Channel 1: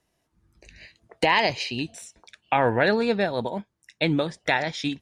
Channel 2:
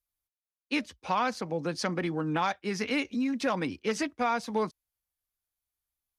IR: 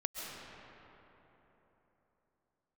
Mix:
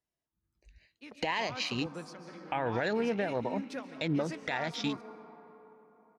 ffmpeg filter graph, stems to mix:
-filter_complex "[0:a]afwtdn=0.0178,volume=-3dB,asplit=2[a][b];[1:a]adelay=300,volume=-13.5dB,asplit=2[c][d];[d]volume=-6dB[e];[b]apad=whole_len=285960[f];[c][f]sidechaingate=range=-33dB:threshold=-58dB:ratio=16:detection=peak[g];[2:a]atrim=start_sample=2205[h];[e][h]afir=irnorm=-1:irlink=0[i];[a][g][i]amix=inputs=3:normalize=0,alimiter=limit=-21.5dB:level=0:latency=1:release=150"

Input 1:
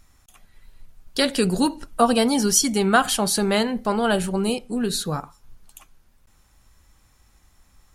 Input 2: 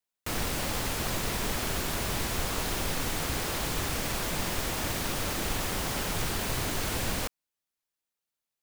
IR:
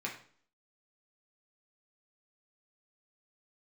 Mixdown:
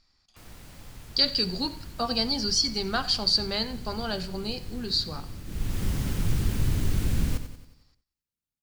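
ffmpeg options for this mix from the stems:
-filter_complex "[0:a]lowpass=f=4.7k:t=q:w=15,volume=-14dB,asplit=3[a][b][c];[b]volume=-10dB[d];[c]volume=-17.5dB[e];[1:a]asubboost=boost=8:cutoff=240,adelay=100,volume=-7dB,afade=t=in:st=5.44:d=0.42:silence=0.237137,asplit=2[f][g];[g]volume=-10dB[h];[2:a]atrim=start_sample=2205[i];[d][i]afir=irnorm=-1:irlink=0[j];[e][h]amix=inputs=2:normalize=0,aecho=0:1:91|182|273|364|455|546|637:1|0.5|0.25|0.125|0.0625|0.0312|0.0156[k];[a][f][j][k]amix=inputs=4:normalize=0"

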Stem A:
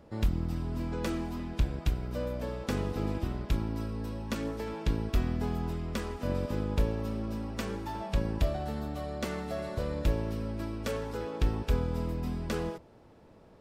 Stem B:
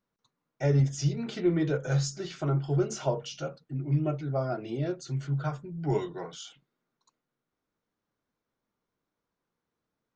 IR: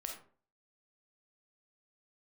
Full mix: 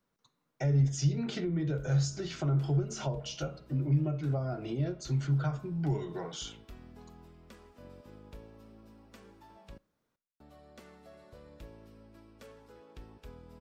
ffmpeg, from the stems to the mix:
-filter_complex "[0:a]lowshelf=f=200:g=-5,adelay=1550,volume=-18.5dB,asplit=3[a][b][c];[a]atrim=end=9.78,asetpts=PTS-STARTPTS,afade=t=out:st=9.776:d=0.004:c=hsin[d];[b]atrim=start=9.78:end=10.4,asetpts=PTS-STARTPTS,volume=0[e];[c]atrim=start=10.4,asetpts=PTS-STARTPTS,afade=t=in:d=0.004:c=hsin[f];[d][e][f]concat=n=3:v=0:a=1,asplit=2[g][h];[h]volume=-17dB[i];[1:a]bandreject=f=212.5:t=h:w=4,bandreject=f=425:t=h:w=4,bandreject=f=637.5:t=h:w=4,bandreject=f=850:t=h:w=4,bandreject=f=1.0625k:t=h:w=4,bandreject=f=1.275k:t=h:w=4,bandreject=f=1.4875k:t=h:w=4,bandreject=f=1.7k:t=h:w=4,bandreject=f=1.9125k:t=h:w=4,bandreject=f=2.125k:t=h:w=4,bandreject=f=2.3375k:t=h:w=4,bandreject=f=2.55k:t=h:w=4,bandreject=f=2.7625k:t=h:w=4,bandreject=f=2.975k:t=h:w=4,bandreject=f=3.1875k:t=h:w=4,bandreject=f=3.4k:t=h:w=4,bandreject=f=3.6125k:t=h:w=4,bandreject=f=3.825k:t=h:w=4,bandreject=f=4.0375k:t=h:w=4,acompressor=threshold=-31dB:ratio=1.5,volume=2dB,asplit=2[j][k];[k]volume=-11dB[l];[2:a]atrim=start_sample=2205[m];[i][l]amix=inputs=2:normalize=0[n];[n][m]afir=irnorm=-1:irlink=0[o];[g][j][o]amix=inputs=3:normalize=0,acrossover=split=200[p][q];[q]acompressor=threshold=-35dB:ratio=10[r];[p][r]amix=inputs=2:normalize=0"

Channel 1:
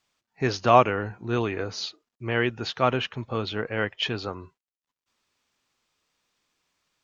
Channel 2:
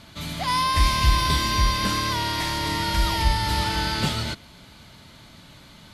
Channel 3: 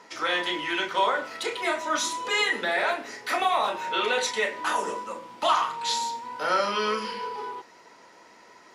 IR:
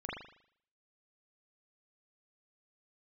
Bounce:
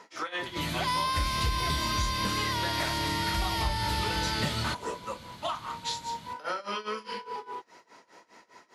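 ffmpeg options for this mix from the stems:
-filter_complex "[0:a]volume=-14.5dB[a];[1:a]highpass=50,adelay=400,volume=-1dB[b];[2:a]volume=0.5dB[c];[a][c]amix=inputs=2:normalize=0,tremolo=f=4.9:d=0.91,acompressor=threshold=-29dB:ratio=6,volume=0dB[d];[b][d]amix=inputs=2:normalize=0,acompressor=threshold=-27dB:ratio=3"

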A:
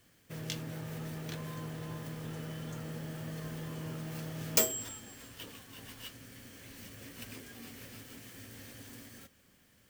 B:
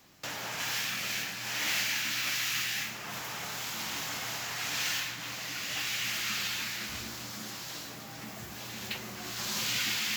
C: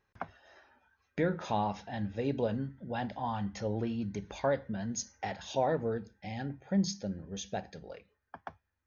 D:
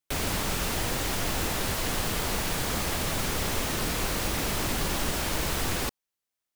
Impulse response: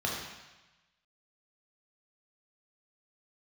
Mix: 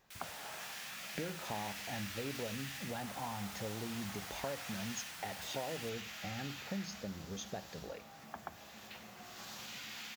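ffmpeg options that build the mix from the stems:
-filter_complex "[0:a]adelay=850,volume=-15dB[a];[1:a]equalizer=f=750:t=o:w=1.4:g=5.5,alimiter=limit=-24dB:level=0:latency=1:release=36,volume=-17.5dB,asplit=2[b][c];[c]volume=-8.5dB[d];[2:a]acompressor=threshold=-43dB:ratio=4,volume=2dB,asplit=2[e][f];[3:a]highpass=1.5k,volume=-18.5dB[g];[f]apad=whole_len=473635[h];[a][h]sidechaincompress=threshold=-58dB:ratio=8:attack=16:release=330[i];[4:a]atrim=start_sample=2205[j];[d][j]afir=irnorm=-1:irlink=0[k];[i][b][e][g][k]amix=inputs=5:normalize=0"

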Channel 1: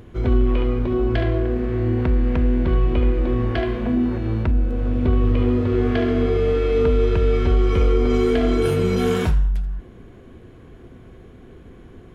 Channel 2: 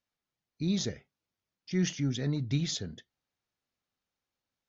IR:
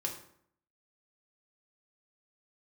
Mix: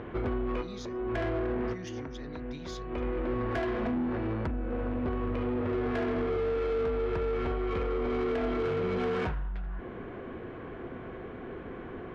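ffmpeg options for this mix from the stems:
-filter_complex "[0:a]lowpass=2.2k,acompressor=threshold=-27dB:ratio=4,volume=-1.5dB[a];[1:a]volume=-18.5dB,asplit=2[b][c];[c]apad=whole_len=535771[d];[a][d]sidechaincompress=threshold=-57dB:ratio=8:attack=5.1:release=293[e];[e][b]amix=inputs=2:normalize=0,asplit=2[f][g];[g]highpass=f=720:p=1,volume=19dB,asoftclip=type=tanh:threshold=-24.5dB[h];[f][h]amix=inputs=2:normalize=0,lowpass=f=2.5k:p=1,volume=-6dB"

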